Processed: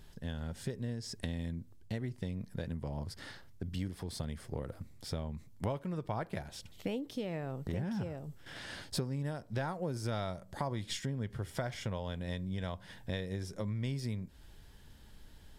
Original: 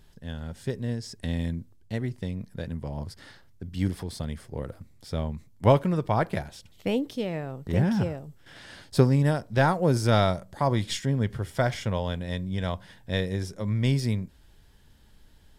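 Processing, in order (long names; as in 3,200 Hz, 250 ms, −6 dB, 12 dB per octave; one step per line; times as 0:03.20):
downward compressor 5 to 1, threshold −36 dBFS, peak gain reduction 20 dB
level +1 dB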